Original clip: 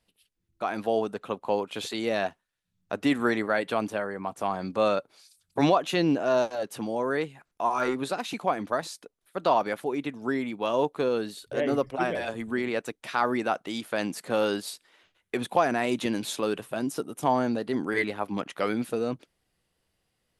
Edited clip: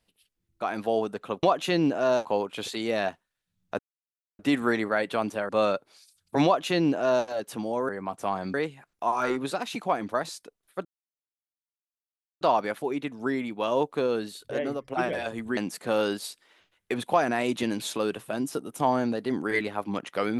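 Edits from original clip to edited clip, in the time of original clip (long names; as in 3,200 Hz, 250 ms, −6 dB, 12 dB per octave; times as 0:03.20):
0:02.97: splice in silence 0.60 s
0:04.07–0:04.72: move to 0:07.12
0:05.68–0:06.50: duplicate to 0:01.43
0:09.43: splice in silence 1.56 s
0:11.50–0:11.90: fade out, to −14 dB
0:12.59–0:14.00: remove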